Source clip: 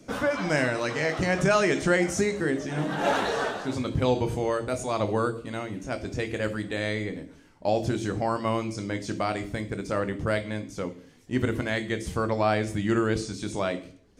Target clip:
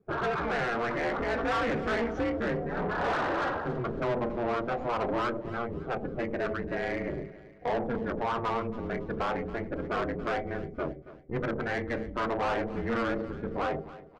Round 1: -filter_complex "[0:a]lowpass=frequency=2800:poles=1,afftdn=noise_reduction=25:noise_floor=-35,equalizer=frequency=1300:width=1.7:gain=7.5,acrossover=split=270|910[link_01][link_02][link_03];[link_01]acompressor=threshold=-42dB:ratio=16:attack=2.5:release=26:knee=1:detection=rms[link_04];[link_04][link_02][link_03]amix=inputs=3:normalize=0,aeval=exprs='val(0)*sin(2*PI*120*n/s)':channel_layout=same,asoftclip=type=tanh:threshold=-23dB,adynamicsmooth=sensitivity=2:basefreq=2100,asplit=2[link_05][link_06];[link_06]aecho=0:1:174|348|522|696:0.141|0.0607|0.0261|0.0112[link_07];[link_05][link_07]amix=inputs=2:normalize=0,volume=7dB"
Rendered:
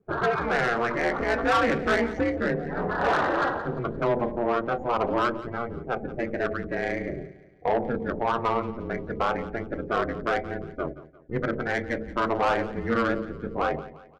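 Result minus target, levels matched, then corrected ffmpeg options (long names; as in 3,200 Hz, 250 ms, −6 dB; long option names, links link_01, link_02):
echo 103 ms early; soft clipping: distortion −6 dB
-filter_complex "[0:a]lowpass=frequency=2800:poles=1,afftdn=noise_reduction=25:noise_floor=-35,equalizer=frequency=1300:width=1.7:gain=7.5,acrossover=split=270|910[link_01][link_02][link_03];[link_01]acompressor=threshold=-42dB:ratio=16:attack=2.5:release=26:knee=1:detection=rms[link_04];[link_04][link_02][link_03]amix=inputs=3:normalize=0,aeval=exprs='val(0)*sin(2*PI*120*n/s)':channel_layout=same,asoftclip=type=tanh:threshold=-31.5dB,adynamicsmooth=sensitivity=2:basefreq=2100,asplit=2[link_05][link_06];[link_06]aecho=0:1:277|554|831|1108:0.141|0.0607|0.0261|0.0112[link_07];[link_05][link_07]amix=inputs=2:normalize=0,volume=7dB"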